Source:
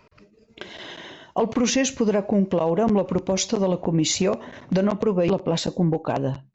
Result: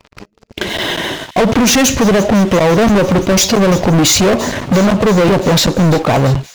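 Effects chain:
low-shelf EQ 88 Hz +10 dB
leveller curve on the samples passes 5
on a send: delay with a high-pass on its return 341 ms, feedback 77%, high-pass 3,000 Hz, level −16 dB
on the sum: level +2.5 dB

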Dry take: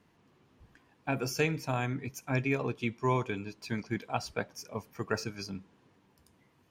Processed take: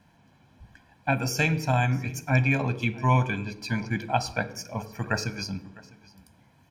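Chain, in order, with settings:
single-tap delay 654 ms −22 dB
convolution reverb RT60 0.80 s, pre-delay 15 ms, DRR 13.5 dB
level +4 dB

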